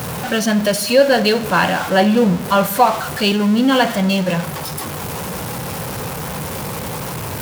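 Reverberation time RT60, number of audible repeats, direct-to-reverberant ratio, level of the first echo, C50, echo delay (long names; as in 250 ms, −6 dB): 0.95 s, no echo audible, 11.5 dB, no echo audible, 14.0 dB, no echo audible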